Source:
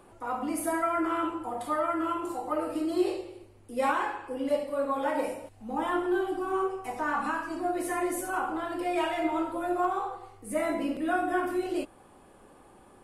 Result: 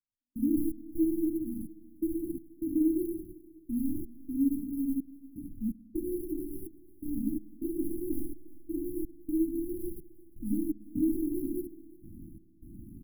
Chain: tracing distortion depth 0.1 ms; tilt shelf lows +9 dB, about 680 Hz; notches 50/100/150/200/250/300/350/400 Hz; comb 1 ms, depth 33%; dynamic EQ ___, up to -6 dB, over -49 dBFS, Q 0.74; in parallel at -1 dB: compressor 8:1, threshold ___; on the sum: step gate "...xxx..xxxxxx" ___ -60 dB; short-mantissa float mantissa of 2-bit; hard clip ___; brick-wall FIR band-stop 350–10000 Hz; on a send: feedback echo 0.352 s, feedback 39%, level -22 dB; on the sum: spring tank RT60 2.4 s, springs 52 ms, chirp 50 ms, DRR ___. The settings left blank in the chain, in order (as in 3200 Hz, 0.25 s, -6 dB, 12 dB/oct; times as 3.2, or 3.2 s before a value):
2200 Hz, -38 dBFS, 126 bpm, -18.5 dBFS, 17 dB